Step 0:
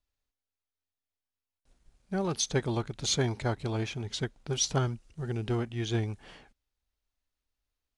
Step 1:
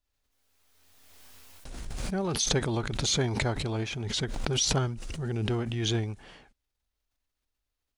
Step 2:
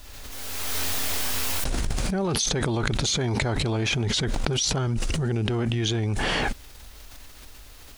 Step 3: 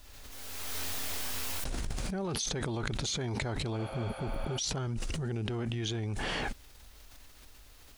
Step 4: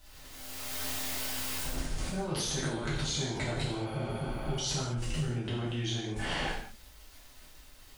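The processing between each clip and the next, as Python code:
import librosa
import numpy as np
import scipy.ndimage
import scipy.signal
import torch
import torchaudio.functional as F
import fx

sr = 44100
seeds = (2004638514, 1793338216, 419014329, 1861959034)

y1 = fx.pre_swell(x, sr, db_per_s=25.0)
y2 = fx.env_flatten(y1, sr, amount_pct=100)
y2 = y2 * librosa.db_to_amplitude(-1.5)
y3 = fx.spec_repair(y2, sr, seeds[0], start_s=3.81, length_s=0.75, low_hz=460.0, high_hz=9300.0, source='before')
y3 = y3 * librosa.db_to_amplitude(-9.0)
y4 = fx.rev_gated(y3, sr, seeds[1], gate_ms=250, shape='falling', drr_db=-7.5)
y4 = y4 * librosa.db_to_amplitude(-7.0)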